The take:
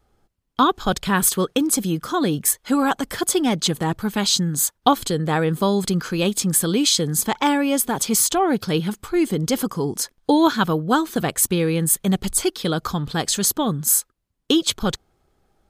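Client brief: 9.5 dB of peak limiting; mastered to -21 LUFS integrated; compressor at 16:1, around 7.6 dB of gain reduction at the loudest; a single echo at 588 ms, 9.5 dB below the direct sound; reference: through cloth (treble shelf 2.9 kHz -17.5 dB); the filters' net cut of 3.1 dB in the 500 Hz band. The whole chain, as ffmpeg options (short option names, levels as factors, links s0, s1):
-af "equalizer=f=500:t=o:g=-3.5,acompressor=threshold=0.112:ratio=16,alimiter=limit=0.178:level=0:latency=1,highshelf=f=2900:g=-17.5,aecho=1:1:588:0.335,volume=2.11"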